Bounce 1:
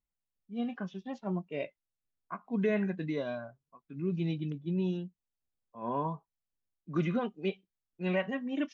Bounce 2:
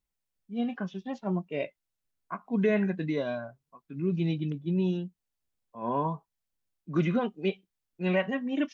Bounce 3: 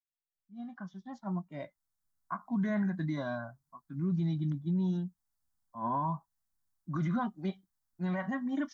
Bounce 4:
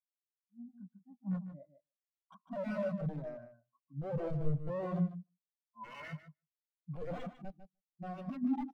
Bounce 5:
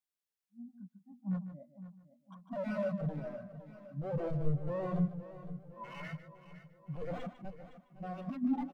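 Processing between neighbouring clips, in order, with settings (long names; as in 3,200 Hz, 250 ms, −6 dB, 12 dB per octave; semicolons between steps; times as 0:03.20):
notch filter 1,200 Hz, Q 27; level +4 dB
fade in at the beginning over 2.32 s; phaser with its sweep stopped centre 1,100 Hz, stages 4; brickwall limiter −27.5 dBFS, peak gain reduction 7.5 dB; level +2.5 dB
wrap-around overflow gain 28.5 dB; repeating echo 150 ms, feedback 19%, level −4.5 dB; every bin expanded away from the loudest bin 2.5 to 1; level +3 dB
repeating echo 511 ms, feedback 55%, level −14 dB; level +1 dB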